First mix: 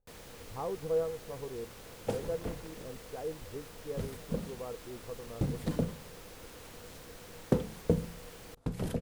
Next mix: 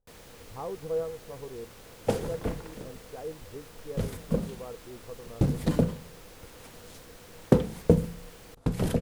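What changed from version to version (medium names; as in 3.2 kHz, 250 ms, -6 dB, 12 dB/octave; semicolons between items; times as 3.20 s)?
second sound +7.5 dB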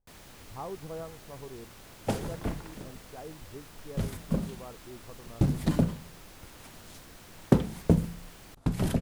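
master: add peaking EQ 480 Hz -12.5 dB 0.22 oct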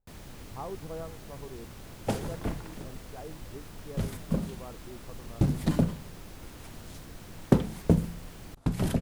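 first sound: add bass shelf 400 Hz +9 dB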